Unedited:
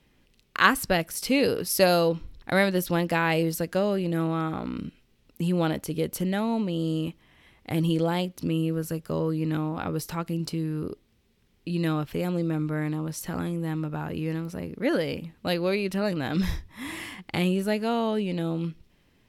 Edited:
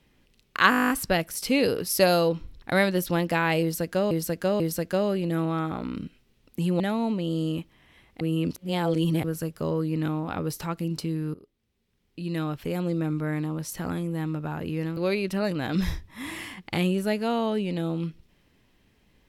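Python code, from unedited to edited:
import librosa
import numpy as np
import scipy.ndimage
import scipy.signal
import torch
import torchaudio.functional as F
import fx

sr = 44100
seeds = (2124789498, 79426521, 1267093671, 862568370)

y = fx.edit(x, sr, fx.stutter(start_s=0.7, slice_s=0.02, count=11),
    fx.repeat(start_s=3.42, length_s=0.49, count=3),
    fx.cut(start_s=5.62, length_s=0.67),
    fx.reverse_span(start_s=7.7, length_s=1.03),
    fx.fade_in_from(start_s=10.83, length_s=1.58, floor_db=-18.5),
    fx.cut(start_s=14.46, length_s=1.12), tone=tone)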